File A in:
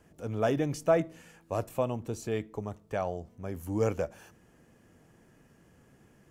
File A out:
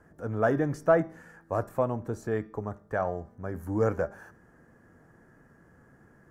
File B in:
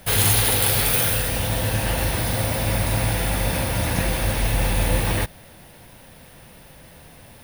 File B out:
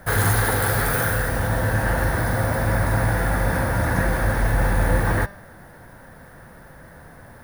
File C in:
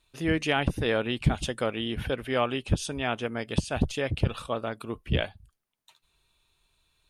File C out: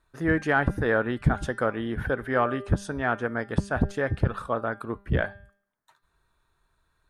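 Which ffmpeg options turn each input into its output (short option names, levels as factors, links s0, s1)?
-filter_complex "[0:a]highshelf=f=2100:t=q:w=3:g=-8.5,bandreject=f=199.8:t=h:w=4,bandreject=f=399.6:t=h:w=4,bandreject=f=599.4:t=h:w=4,bandreject=f=799.2:t=h:w=4,bandreject=f=999:t=h:w=4,bandreject=f=1198.8:t=h:w=4,bandreject=f=1398.6:t=h:w=4,bandreject=f=1598.4:t=h:w=4,bandreject=f=1798.2:t=h:w=4,bandreject=f=1998:t=h:w=4,bandreject=f=2197.8:t=h:w=4,bandreject=f=2397.6:t=h:w=4,bandreject=f=2597.4:t=h:w=4,bandreject=f=2797.2:t=h:w=4,bandreject=f=2997:t=h:w=4,bandreject=f=3196.8:t=h:w=4,bandreject=f=3396.6:t=h:w=4,bandreject=f=3596.4:t=h:w=4,bandreject=f=3796.2:t=h:w=4,bandreject=f=3996:t=h:w=4,bandreject=f=4195.8:t=h:w=4,bandreject=f=4395.6:t=h:w=4,bandreject=f=4595.4:t=h:w=4,bandreject=f=4795.2:t=h:w=4,bandreject=f=4995:t=h:w=4,bandreject=f=5194.8:t=h:w=4,bandreject=f=5394.6:t=h:w=4,bandreject=f=5594.4:t=h:w=4,bandreject=f=5794.2:t=h:w=4,bandreject=f=5994:t=h:w=4,asplit=2[s0][s1];[s1]asoftclip=type=tanh:threshold=0.141,volume=0.266[s2];[s0][s2]amix=inputs=2:normalize=0"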